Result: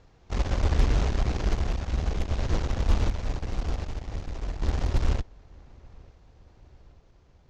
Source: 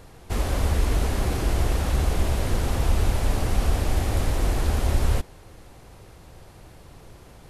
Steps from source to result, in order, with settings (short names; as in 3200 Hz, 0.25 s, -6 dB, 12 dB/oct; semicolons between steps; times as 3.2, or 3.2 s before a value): steep low-pass 6800 Hz 48 dB/oct; low shelf 80 Hz +5 dB; added harmonics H 6 -17 dB, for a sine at -9.5 dBFS; random-step tremolo 1.3 Hz; darkening echo 0.891 s, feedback 53%, low-pass 2000 Hz, level -18.5 dB; upward expander 1.5:1, over -32 dBFS; gain -2 dB